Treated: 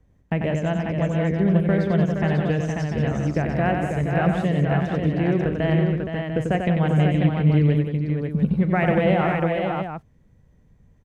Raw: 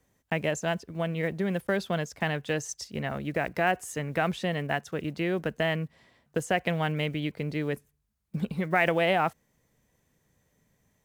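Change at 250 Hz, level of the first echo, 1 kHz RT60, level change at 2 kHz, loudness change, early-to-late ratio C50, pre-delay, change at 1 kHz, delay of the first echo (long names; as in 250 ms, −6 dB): +11.5 dB, −17.0 dB, no reverb audible, +1.0 dB, +8.0 dB, no reverb audible, no reverb audible, +4.0 dB, 40 ms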